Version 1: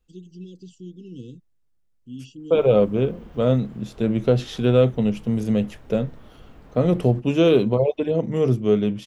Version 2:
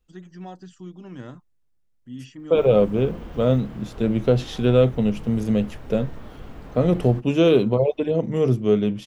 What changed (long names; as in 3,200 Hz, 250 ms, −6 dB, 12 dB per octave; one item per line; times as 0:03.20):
first voice: remove linear-phase brick-wall band-stop 520–2,600 Hz
background +7.5 dB